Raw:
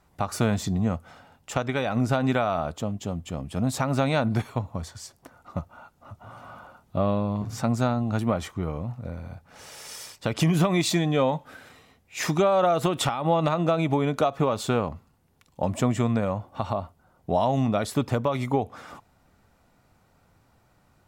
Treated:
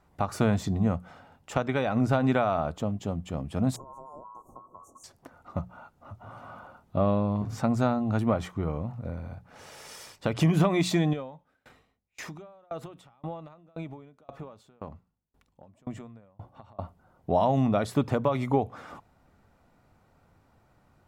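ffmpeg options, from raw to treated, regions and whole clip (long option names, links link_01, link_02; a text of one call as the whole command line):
ffmpeg -i in.wav -filter_complex "[0:a]asettb=1/sr,asplit=3[link_01][link_02][link_03];[link_01]atrim=end=3.764[link_04];[link_02]atrim=start=3.76:end=5.04,asetpts=PTS-STARTPTS,afade=type=in:duration=0.004:curve=qsin,afade=type=out:start_time=1.276:duration=0.004:curve=qsin,aeval=exprs='val(0)*sin(2*PI*1200*n/s)':channel_layout=same,acompressor=threshold=-39dB:ratio=5:attack=3.2:release=140:knee=1:detection=peak,asuperstop=centerf=2700:order=20:qfactor=0.53[link_05];[link_03]atrim=start=5.036[link_06];[link_04][link_05]acrossfade=duration=0.004:curve1=hsin:curve2=qsin[link_07];[link_07][link_06]acrossfade=duration=0.004:curve1=qsin:curve2=hsin,asettb=1/sr,asplit=3[link_08][link_09][link_10];[link_08]atrim=end=11.134[link_11];[link_09]atrim=start=11.13:end=16.79,asetpts=PTS-STARTPTS,afade=type=in:duration=0.004:curve=qsin,afade=type=out:start_time=5.656:duration=0.004:curve=qsin,acompressor=threshold=-31dB:ratio=3:attack=3.2:release=140:knee=1:detection=peak,aeval=exprs='val(0)+0.000562*(sin(2*PI*50*n/s)+sin(2*PI*2*50*n/s)/2+sin(2*PI*3*50*n/s)/3+sin(2*PI*4*50*n/s)/4+sin(2*PI*5*50*n/s)/5)':channel_layout=same,aeval=exprs='val(0)*pow(10,-32*if(lt(mod(1.9*n/s,1),2*abs(1.9)/1000),1-mod(1.9*n/s,1)/(2*abs(1.9)/1000),(mod(1.9*n/s,1)-2*abs(1.9)/1000)/(1-2*abs(1.9)/1000))/20)':channel_layout=same[link_12];[link_10]atrim=start=16.786[link_13];[link_11][link_12]acrossfade=duration=0.004:curve1=hsin:curve2=qsin[link_14];[link_14][link_13]acrossfade=duration=0.004:curve1=qsin:curve2=hsin,highshelf=frequency=2800:gain=-8,bandreject=frequency=60:width_type=h:width=6,bandreject=frequency=120:width_type=h:width=6,bandreject=frequency=180:width_type=h:width=6" out.wav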